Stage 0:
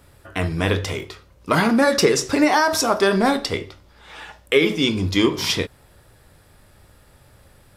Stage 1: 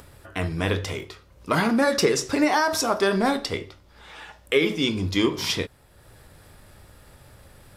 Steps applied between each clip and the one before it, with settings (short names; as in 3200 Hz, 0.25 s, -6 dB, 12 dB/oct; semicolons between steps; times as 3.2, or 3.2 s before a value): upward compressor, threshold -37 dBFS; gain -4 dB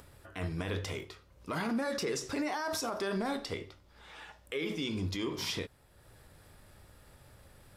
limiter -18 dBFS, peak gain reduction 10 dB; gain -7.5 dB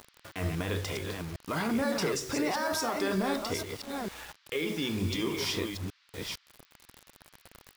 reverse delay 0.454 s, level -5 dB; bit-crush 8-bit; band noise 1100–4900 Hz -70 dBFS; gain +3 dB